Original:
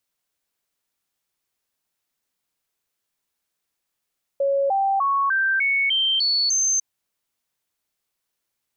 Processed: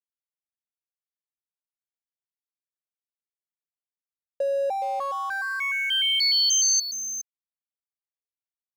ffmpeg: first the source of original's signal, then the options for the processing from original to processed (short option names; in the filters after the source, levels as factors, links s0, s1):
-f lavfi -i "aevalsrc='0.133*clip(min(mod(t,0.3),0.3-mod(t,0.3))/0.005,0,1)*sin(2*PI*554*pow(2,floor(t/0.3)/2)*mod(t,0.3))':d=2.4:s=44100"
-filter_complex "[0:a]aecho=1:1:416:0.355,acrossover=split=470|3000[s0][s1][s2];[s1]acompressor=threshold=0.0398:ratio=6[s3];[s0][s3][s2]amix=inputs=3:normalize=0,aeval=exprs='sgn(val(0))*max(abs(val(0))-0.00708,0)':c=same"